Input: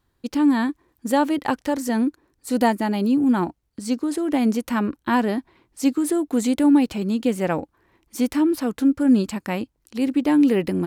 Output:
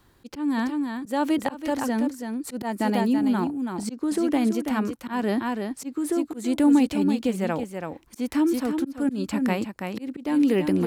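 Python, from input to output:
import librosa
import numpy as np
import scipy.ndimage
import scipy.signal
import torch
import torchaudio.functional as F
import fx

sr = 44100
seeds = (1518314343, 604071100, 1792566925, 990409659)

p1 = x * (1.0 - 0.41 / 2.0 + 0.41 / 2.0 * np.cos(2.0 * np.pi * 0.74 * (np.arange(len(x)) / sr)))
p2 = p1 + fx.echo_single(p1, sr, ms=330, db=-8.5, dry=0)
p3 = fx.auto_swell(p2, sr, attack_ms=256.0)
y = fx.band_squash(p3, sr, depth_pct=40)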